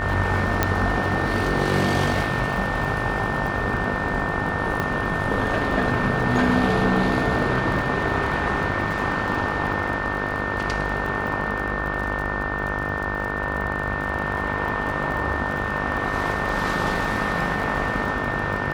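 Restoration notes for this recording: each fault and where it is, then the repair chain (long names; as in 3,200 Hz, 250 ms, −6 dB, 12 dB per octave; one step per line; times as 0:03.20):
mains buzz 50 Hz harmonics 31 −29 dBFS
surface crackle 40 per second −30 dBFS
whistle 1,800 Hz −28 dBFS
0:00.63: click −4 dBFS
0:04.80: click −11 dBFS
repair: click removal
hum removal 50 Hz, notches 31
notch filter 1,800 Hz, Q 30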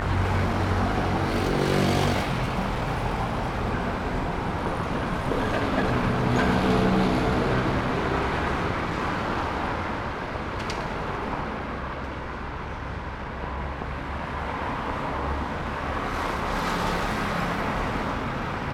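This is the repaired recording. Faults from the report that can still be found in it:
0:00.63: click
0:04.80: click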